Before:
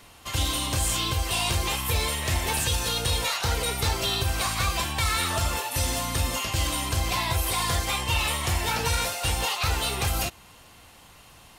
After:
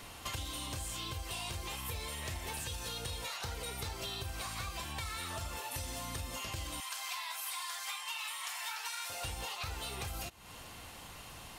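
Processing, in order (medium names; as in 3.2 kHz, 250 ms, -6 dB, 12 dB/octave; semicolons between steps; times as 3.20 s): 6.80–9.10 s: high-pass 920 Hz 24 dB/octave; compression 12:1, threshold -39 dBFS, peak gain reduction 18.5 dB; trim +1.5 dB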